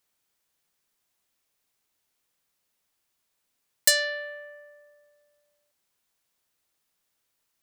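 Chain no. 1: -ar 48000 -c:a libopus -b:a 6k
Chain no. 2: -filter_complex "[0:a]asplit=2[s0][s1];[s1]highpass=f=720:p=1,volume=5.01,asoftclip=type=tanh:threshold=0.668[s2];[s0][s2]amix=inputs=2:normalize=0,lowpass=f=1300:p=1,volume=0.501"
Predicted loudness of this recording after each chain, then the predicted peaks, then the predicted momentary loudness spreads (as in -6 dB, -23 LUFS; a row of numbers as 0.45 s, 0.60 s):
-29.0 LUFS, -26.0 LUFS; -14.5 dBFS, -12.5 dBFS; 18 LU, 19 LU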